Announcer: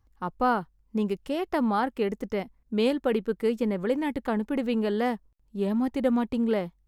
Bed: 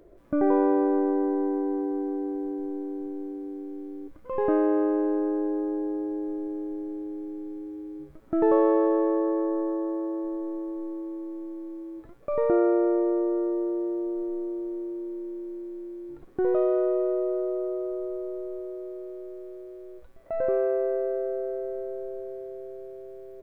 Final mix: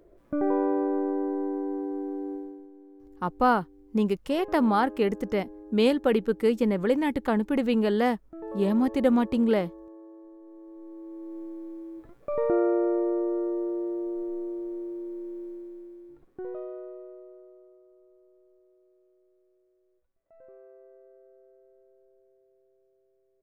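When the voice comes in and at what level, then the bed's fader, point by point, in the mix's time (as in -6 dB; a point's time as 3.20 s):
3.00 s, +2.5 dB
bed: 2.34 s -3.5 dB
2.71 s -17.5 dB
10.40 s -17.5 dB
11.38 s -2 dB
15.44 s -2 dB
17.84 s -27 dB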